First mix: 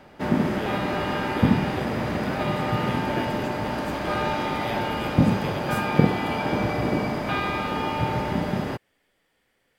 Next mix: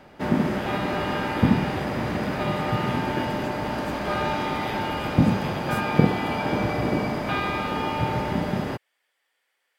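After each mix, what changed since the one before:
speech: add high-pass 790 Hz 12 dB/octave; reverb: off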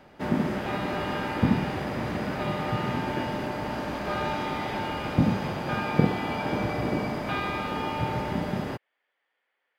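speech: add distance through air 350 m; background -3.5 dB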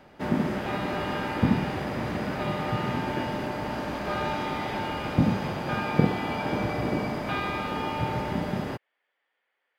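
no change

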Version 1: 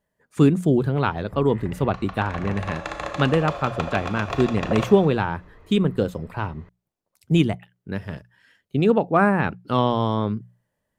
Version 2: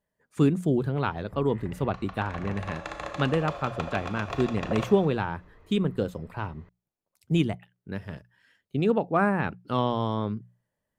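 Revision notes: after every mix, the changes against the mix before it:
speech -5.5 dB; background -5.5 dB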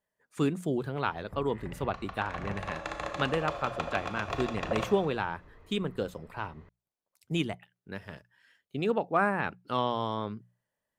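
speech: add bass shelf 370 Hz -10 dB

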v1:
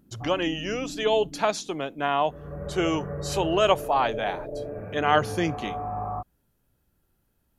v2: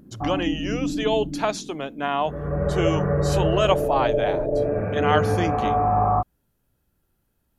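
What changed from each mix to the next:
background +11.5 dB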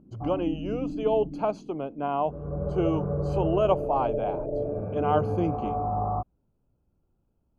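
background -6.0 dB; master: add boxcar filter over 24 samples

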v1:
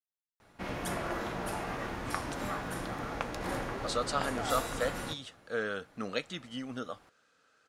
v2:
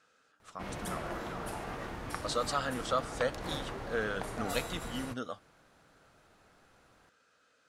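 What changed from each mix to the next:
speech: entry -1.60 s; background: send -11.5 dB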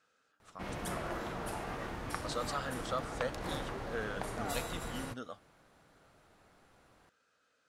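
speech -5.5 dB

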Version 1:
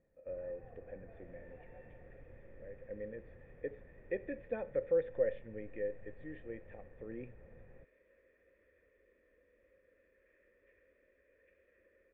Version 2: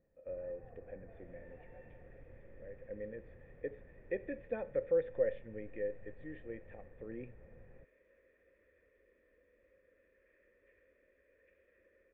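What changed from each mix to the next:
first sound: add distance through air 270 m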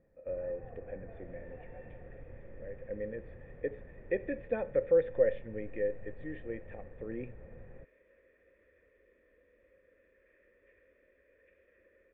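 speech +5.5 dB; first sound +7.0 dB; second sound +3.5 dB

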